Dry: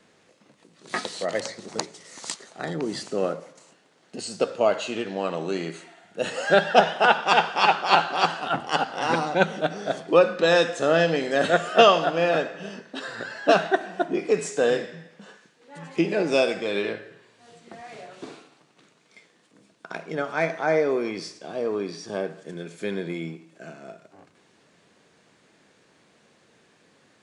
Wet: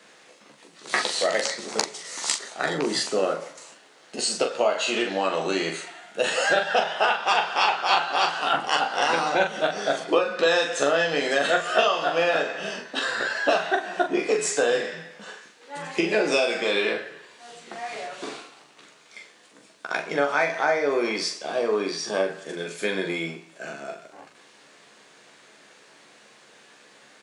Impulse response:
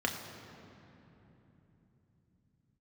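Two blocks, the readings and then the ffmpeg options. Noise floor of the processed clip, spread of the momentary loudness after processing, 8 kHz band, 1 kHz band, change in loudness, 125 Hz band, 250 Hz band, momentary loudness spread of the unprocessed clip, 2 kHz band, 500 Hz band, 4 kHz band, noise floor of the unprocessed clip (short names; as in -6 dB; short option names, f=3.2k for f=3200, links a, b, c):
-54 dBFS, 15 LU, +7.5 dB, -1.0 dB, -0.5 dB, -7.0 dB, -2.0 dB, 19 LU, +2.0 dB, -1.0 dB, +3.0 dB, -61 dBFS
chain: -af "highpass=f=690:p=1,acompressor=threshold=-28dB:ratio=6,aecho=1:1:14|42:0.501|0.531,volume=8dB"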